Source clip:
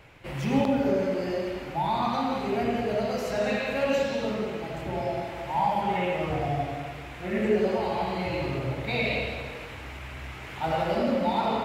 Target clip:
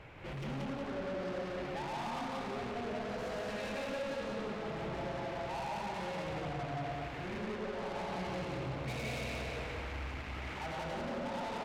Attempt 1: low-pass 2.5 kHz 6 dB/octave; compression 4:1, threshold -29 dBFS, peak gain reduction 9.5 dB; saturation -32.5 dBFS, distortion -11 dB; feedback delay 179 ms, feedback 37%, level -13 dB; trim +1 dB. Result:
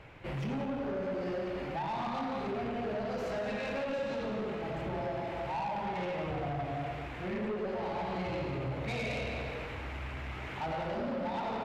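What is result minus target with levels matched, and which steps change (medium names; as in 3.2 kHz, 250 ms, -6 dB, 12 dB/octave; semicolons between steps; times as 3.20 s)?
echo-to-direct -11.5 dB; saturation: distortion -5 dB
change: saturation -41 dBFS, distortion -6 dB; change: feedback delay 179 ms, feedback 37%, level -1.5 dB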